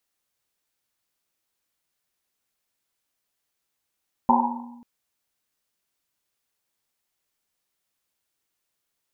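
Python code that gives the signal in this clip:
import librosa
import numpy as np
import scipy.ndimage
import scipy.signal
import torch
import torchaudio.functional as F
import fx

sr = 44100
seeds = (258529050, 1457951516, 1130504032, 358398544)

y = fx.risset_drum(sr, seeds[0], length_s=0.54, hz=240.0, decay_s=1.29, noise_hz=900.0, noise_width_hz=200.0, noise_pct=65)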